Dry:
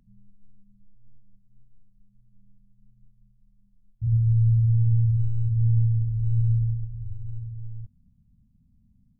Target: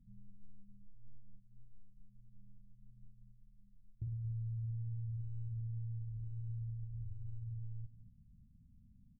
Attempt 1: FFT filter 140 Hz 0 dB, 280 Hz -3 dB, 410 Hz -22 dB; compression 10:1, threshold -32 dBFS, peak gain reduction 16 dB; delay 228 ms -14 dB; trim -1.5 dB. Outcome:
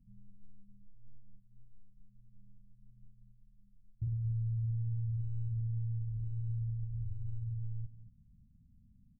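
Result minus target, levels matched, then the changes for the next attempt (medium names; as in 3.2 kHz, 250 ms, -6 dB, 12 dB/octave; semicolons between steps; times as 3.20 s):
compression: peak gain reduction -6 dB
change: compression 10:1, threshold -38.5 dBFS, peak gain reduction 22 dB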